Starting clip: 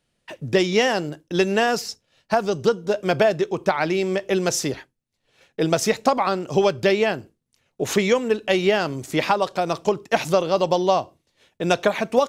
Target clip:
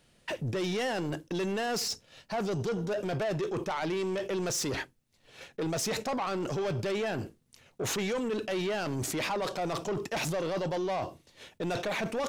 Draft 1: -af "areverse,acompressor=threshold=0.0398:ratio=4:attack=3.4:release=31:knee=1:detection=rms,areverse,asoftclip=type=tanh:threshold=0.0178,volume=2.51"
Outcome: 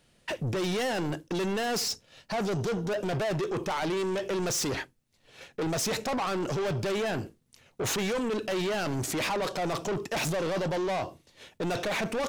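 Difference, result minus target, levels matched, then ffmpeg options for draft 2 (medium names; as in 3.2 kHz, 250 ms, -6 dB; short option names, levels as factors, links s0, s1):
compression: peak gain reduction -6 dB
-af "areverse,acompressor=threshold=0.0158:ratio=4:attack=3.4:release=31:knee=1:detection=rms,areverse,asoftclip=type=tanh:threshold=0.0178,volume=2.51"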